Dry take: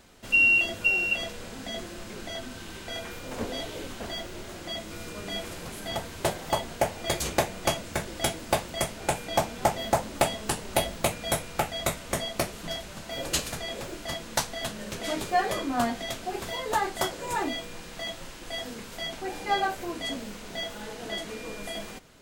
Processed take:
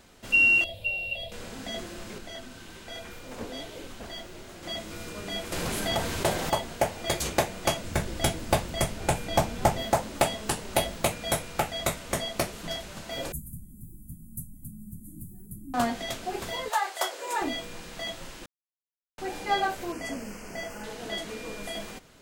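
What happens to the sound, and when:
0.64–1.32 EQ curve 120 Hz 0 dB, 220 Hz -15 dB, 390 Hz -18 dB, 570 Hz +1 dB, 1400 Hz -27 dB, 2300 Hz -10 dB, 3700 Hz 0 dB, 6200 Hz -22 dB, 11000 Hz -7 dB
2.18–4.63 flange 1.1 Hz, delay 0.1 ms, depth 8 ms, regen +76%
5.52–6.5 fast leveller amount 50%
7.84–9.83 low shelf 170 Hz +9.5 dB
13.32–15.74 inverse Chebyshev band-stop 500–5200 Hz, stop band 50 dB
16.68–17.4 HPF 690 Hz -> 320 Hz 24 dB/oct
18.46–19.18 mute
19.92–20.84 Butterworth band-stop 3700 Hz, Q 2.1

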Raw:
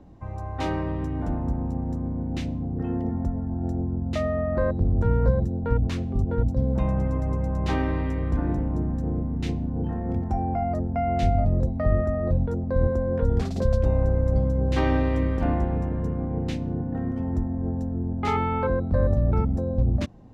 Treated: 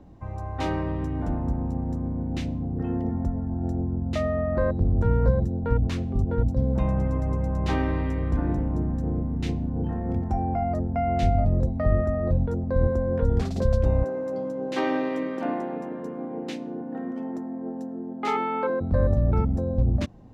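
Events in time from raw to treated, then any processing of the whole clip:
14.04–18.81 HPF 240 Hz 24 dB/oct

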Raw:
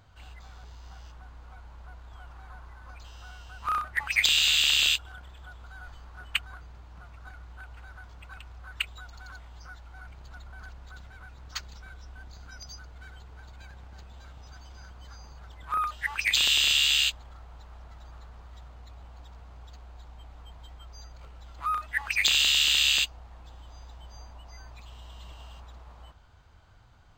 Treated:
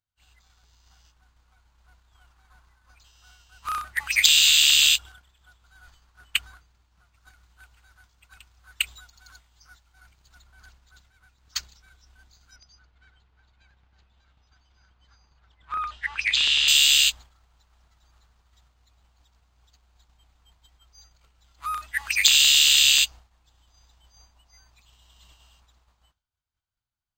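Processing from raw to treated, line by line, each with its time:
7.14–10.42 high shelf 4600 Hz +4 dB
12.56–16.68 LPF 3400 Hz
whole clip: expander -37 dBFS; EQ curve 340 Hz 0 dB, 540 Hz -3 dB, 7500 Hz +14 dB; gain -3.5 dB

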